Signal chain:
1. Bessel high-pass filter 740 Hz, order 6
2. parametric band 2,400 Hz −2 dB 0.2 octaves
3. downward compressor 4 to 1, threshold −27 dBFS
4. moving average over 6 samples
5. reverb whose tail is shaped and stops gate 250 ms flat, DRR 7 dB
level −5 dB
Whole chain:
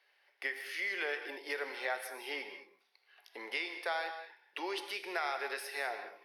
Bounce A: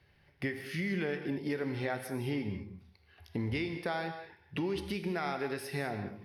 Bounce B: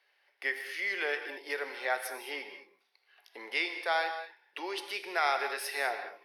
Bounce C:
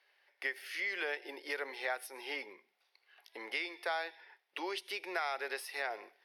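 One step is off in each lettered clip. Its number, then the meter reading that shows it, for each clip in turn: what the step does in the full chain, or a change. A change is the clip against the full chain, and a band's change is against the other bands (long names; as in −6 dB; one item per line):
1, 250 Hz band +18.0 dB
3, average gain reduction 2.5 dB
5, change in momentary loudness spread −2 LU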